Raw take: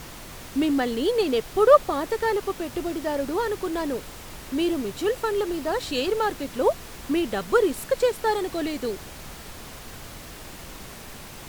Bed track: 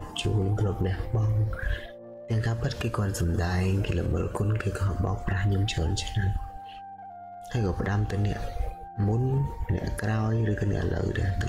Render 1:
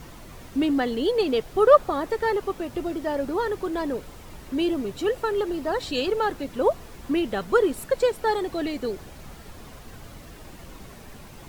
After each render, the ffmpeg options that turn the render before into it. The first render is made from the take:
ffmpeg -i in.wav -af "afftdn=noise_reduction=8:noise_floor=-41" out.wav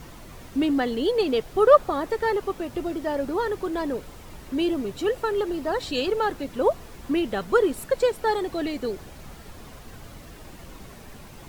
ffmpeg -i in.wav -af anull out.wav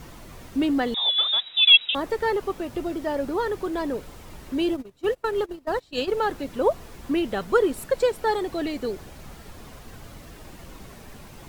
ffmpeg -i in.wav -filter_complex "[0:a]asettb=1/sr,asplit=3[link_01][link_02][link_03];[link_01]atrim=end=0.944[link_04];[link_02]atrim=start=0.94:end=1.95,asetpts=PTS-STARTPTS,afade=type=in:duration=0.004:curve=qsin,afade=type=out:start_time=1.006:duration=0.004:curve=qsin,lowpass=frequency=3300:width_type=q:width=0.5098,lowpass=frequency=3300:width_type=q:width=0.6013,lowpass=frequency=3300:width_type=q:width=0.9,lowpass=frequency=3300:width_type=q:width=2.563,afreqshift=-3900[link_05];[link_03]atrim=start=1.946[link_06];[link_04][link_05]acrossfade=duration=0.004:curve1=hsin:curve2=qsin[link_07];[link_07][link_06]acrossfade=duration=0.004:curve1=qsin:curve2=hsin,asplit=3[link_08][link_09][link_10];[link_08]afade=type=out:start_time=4.57:duration=0.02[link_11];[link_09]agate=range=-23dB:threshold=-27dB:ratio=16:release=100:detection=peak,afade=type=in:start_time=4.57:duration=0.02,afade=type=out:start_time=6.15:duration=0.02[link_12];[link_10]afade=type=in:start_time=6.15:duration=0.02[link_13];[link_11][link_12][link_13]amix=inputs=3:normalize=0" out.wav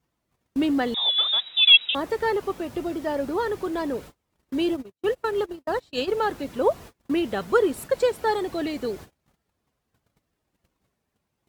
ffmpeg -i in.wav -af "highpass=56,agate=range=-33dB:threshold=-39dB:ratio=16:detection=peak" out.wav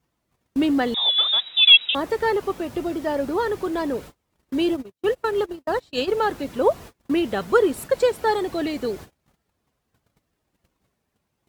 ffmpeg -i in.wav -af "volume=2.5dB,alimiter=limit=-2dB:level=0:latency=1" out.wav

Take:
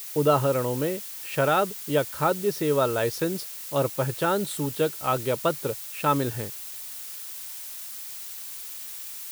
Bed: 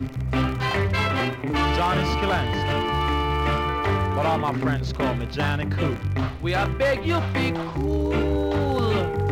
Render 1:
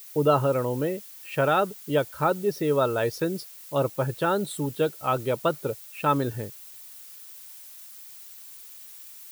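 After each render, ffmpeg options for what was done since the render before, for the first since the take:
ffmpeg -i in.wav -af "afftdn=noise_reduction=9:noise_floor=-38" out.wav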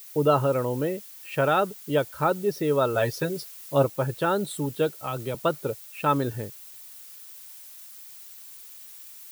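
ffmpeg -i in.wav -filter_complex "[0:a]asettb=1/sr,asplit=3[link_01][link_02][link_03];[link_01]atrim=end=2.944[link_04];[link_02]atrim=start=2.94:end=3.85,asetpts=PTS-STARTPTS,afade=type=in:duration=0.004:curve=qsin,afade=type=out:start_time=0.906:duration=0.004:curve=qsin,aecho=1:1:7.4:0.71,atrim=end_sample=40131[link_05];[link_03]atrim=start=3.846[link_06];[link_04][link_05]acrossfade=duration=0.004:curve1=hsin:curve2=qsin[link_07];[link_07][link_06]acrossfade=duration=0.004:curve1=qsin:curve2=hsin,asettb=1/sr,asplit=3[link_08][link_09][link_10];[link_08]atrim=end=4.944[link_11];[link_09]atrim=start=4.94:end=5.35,asetpts=PTS-STARTPTS,afade=type=in:duration=0.004:curve=qsin,afade=type=out:start_time=0.406:duration=0.004:curve=qsin,acrossover=split=160|3000[link_12][link_13][link_14];[link_13]acompressor=threshold=-27dB:ratio=6:attack=3.2:release=140:knee=2.83:detection=peak[link_15];[link_12][link_15][link_14]amix=inputs=3:normalize=0[link_16];[link_10]atrim=start=5.346[link_17];[link_11][link_16]acrossfade=duration=0.004:curve1=hsin:curve2=qsin[link_18];[link_18][link_17]acrossfade=duration=0.004:curve1=qsin:curve2=hsin" out.wav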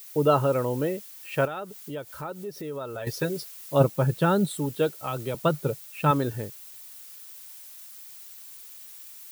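ffmpeg -i in.wav -filter_complex "[0:a]asettb=1/sr,asplit=3[link_01][link_02][link_03];[link_01]atrim=end=1.454[link_04];[link_02]atrim=start=1.45:end=3.07,asetpts=PTS-STARTPTS,afade=type=in:duration=0.004:curve=qsin,afade=type=out:start_time=1.616:duration=0.004:curve=qsin,acompressor=threshold=-37dB:ratio=2.5:attack=3.2:release=140:knee=1:detection=peak[link_05];[link_03]atrim=start=3.066[link_06];[link_04][link_05]acrossfade=duration=0.004:curve1=hsin:curve2=qsin[link_07];[link_07][link_06]acrossfade=duration=0.004:curve1=qsin:curve2=hsin,asettb=1/sr,asplit=3[link_08][link_09][link_10];[link_08]atrim=end=3.804[link_11];[link_09]atrim=start=3.8:end=4.48,asetpts=PTS-STARTPTS,afade=type=in:duration=0.004:curve=qsin,afade=type=out:start_time=0.676:duration=0.004:curve=qsin,equalizer=frequency=170:width_type=o:width=0.77:gain=10.5[link_12];[link_10]atrim=start=4.476[link_13];[link_11][link_12]acrossfade=duration=0.004:curve1=hsin:curve2=qsin[link_14];[link_14][link_13]acrossfade=duration=0.004:curve1=qsin:curve2=hsin,asettb=1/sr,asplit=3[link_15][link_16][link_17];[link_15]atrim=end=5.434[link_18];[link_16]atrim=start=5.43:end=6.11,asetpts=PTS-STARTPTS,afade=type=in:duration=0.004:curve=qsin,afade=type=out:start_time=0.676:duration=0.004:curve=qsin,equalizer=frequency=150:width_type=o:width=0.63:gain=9.5[link_19];[link_17]atrim=start=6.106[link_20];[link_18][link_19]acrossfade=duration=0.004:curve1=hsin:curve2=qsin[link_21];[link_21][link_20]acrossfade=duration=0.004:curve1=qsin:curve2=hsin" out.wav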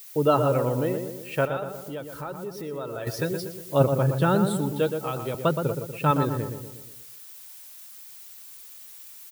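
ffmpeg -i in.wav -filter_complex "[0:a]asplit=2[link_01][link_02];[link_02]adelay=120,lowpass=frequency=1600:poles=1,volume=-6dB,asplit=2[link_03][link_04];[link_04]adelay=120,lowpass=frequency=1600:poles=1,volume=0.52,asplit=2[link_05][link_06];[link_06]adelay=120,lowpass=frequency=1600:poles=1,volume=0.52,asplit=2[link_07][link_08];[link_08]adelay=120,lowpass=frequency=1600:poles=1,volume=0.52,asplit=2[link_09][link_10];[link_10]adelay=120,lowpass=frequency=1600:poles=1,volume=0.52,asplit=2[link_11][link_12];[link_12]adelay=120,lowpass=frequency=1600:poles=1,volume=0.52[link_13];[link_01][link_03][link_05][link_07][link_09][link_11][link_13]amix=inputs=7:normalize=0" out.wav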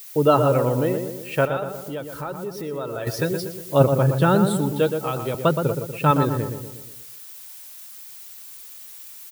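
ffmpeg -i in.wav -af "volume=4dB" out.wav

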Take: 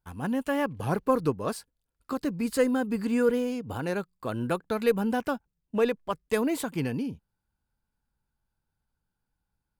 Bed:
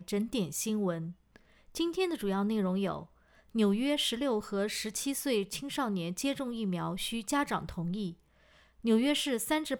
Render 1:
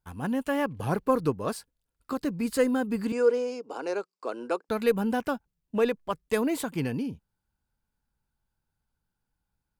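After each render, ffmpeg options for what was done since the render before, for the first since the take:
ffmpeg -i in.wav -filter_complex "[0:a]asettb=1/sr,asplit=3[link_01][link_02][link_03];[link_01]atrim=end=3.124[link_04];[link_02]atrim=start=3.12:end=4.69,asetpts=PTS-STARTPTS,afade=type=in:duration=0.004:curve=qsin,afade=type=out:start_time=1.566:duration=0.004:curve=qsin,highpass=frequency=320:width=0.5412,highpass=frequency=320:width=1.3066,equalizer=frequency=440:width_type=q:width=4:gain=4,equalizer=frequency=1800:width_type=q:width=4:gain=-7,equalizer=frequency=3400:width_type=q:width=4:gain=-9,equalizer=frequency=5200:width_type=q:width=4:gain=7,lowpass=frequency=8100:width=0.5412,lowpass=frequency=8100:width=1.3066[link_05];[link_03]atrim=start=4.686[link_06];[link_04][link_05]acrossfade=duration=0.004:curve1=hsin:curve2=qsin[link_07];[link_07][link_06]acrossfade=duration=0.004:curve1=qsin:curve2=hsin" out.wav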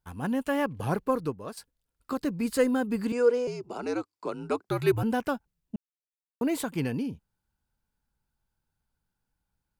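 ffmpeg -i in.wav -filter_complex "[0:a]asettb=1/sr,asplit=3[link_01][link_02][link_03];[link_01]atrim=end=3.474[link_04];[link_02]atrim=start=3.47:end=5.03,asetpts=PTS-STARTPTS,afade=type=in:duration=0.004:curve=qsin,afade=type=out:start_time=1.556:duration=0.004:curve=qsin,afreqshift=-81[link_05];[link_03]atrim=start=5.026[link_06];[link_04][link_05]acrossfade=duration=0.004:curve1=hsin:curve2=qsin[link_07];[link_07][link_06]acrossfade=duration=0.004:curve1=qsin:curve2=hsin,asplit=4[link_08][link_09][link_10][link_11];[link_08]atrim=end=1.57,asetpts=PTS-STARTPTS,afade=type=out:start_time=0.86:duration=0.71:silence=0.266073[link_12];[link_09]atrim=start=1.57:end=5.76,asetpts=PTS-STARTPTS,afade=type=in:duration=0.004:curve=hsin:silence=0.266073,afade=type=out:start_time=4.186:duration=0.004:curve=hsin[link_13];[link_10]atrim=start=5.76:end=6.41,asetpts=PTS-STARTPTS,volume=0[link_14];[link_11]atrim=start=6.41,asetpts=PTS-STARTPTS,afade=type=in:duration=0.004:curve=hsin[link_15];[link_12][link_13][link_14][link_15]concat=n=4:v=0:a=1" out.wav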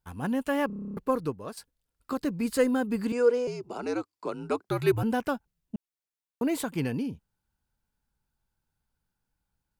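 ffmpeg -i in.wav -filter_complex "[0:a]asplit=11[link_01][link_02][link_03][link_04][link_05][link_06][link_07][link_08][link_09][link_10][link_11];[link_01]atrim=end=0.702[link_12];[link_02]atrim=start=0.668:end=0.702[link_13];[link_03]atrim=start=0.668:end=0.702[link_14];[link_04]atrim=start=0.668:end=0.702[link_15];[link_05]atrim=start=0.668:end=0.702[link_16];[link_06]atrim=start=0.668:end=0.702[link_17];[link_07]atrim=start=0.668:end=0.702[link_18];[link_08]atrim=start=0.668:end=0.702[link_19];[link_09]atrim=start=0.668:end=0.702[link_20];[link_10]atrim=start=0.668:end=0.702[link_21];[link_11]atrim=start=0.968[link_22];[link_12][link_13]acrossfade=duration=0.004:curve1=hsin:curve2=hsin[link_23];[link_23][link_14]acrossfade=duration=0.004:curve1=hsin:curve2=hsin[link_24];[link_24][link_15]acrossfade=duration=0.004:curve1=hsin:curve2=hsin[link_25];[link_25][link_16]acrossfade=duration=0.004:curve1=hsin:curve2=hsin[link_26];[link_26][link_17]acrossfade=duration=0.004:curve1=hsin:curve2=hsin[link_27];[link_27][link_18]acrossfade=duration=0.004:curve1=hsin:curve2=hsin[link_28];[link_28][link_19]acrossfade=duration=0.004:curve1=hsin:curve2=hsin[link_29];[link_29][link_20]acrossfade=duration=0.004:curve1=hsin:curve2=hsin[link_30];[link_30][link_21]acrossfade=duration=0.004:curve1=hsin:curve2=hsin[link_31];[link_31][link_22]acrossfade=duration=0.004:curve1=hsin:curve2=hsin" out.wav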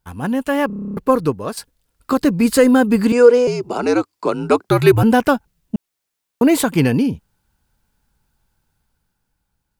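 ffmpeg -i in.wav -af "dynaudnorm=framelen=170:gausssize=13:maxgain=6dB,alimiter=level_in=8.5dB:limit=-1dB:release=50:level=0:latency=1" out.wav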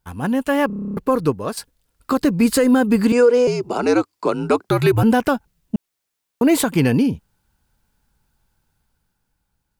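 ffmpeg -i in.wav -af "alimiter=limit=-6.5dB:level=0:latency=1:release=116" out.wav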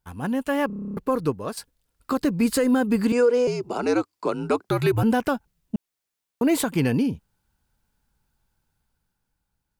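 ffmpeg -i in.wav -af "volume=-5.5dB" out.wav

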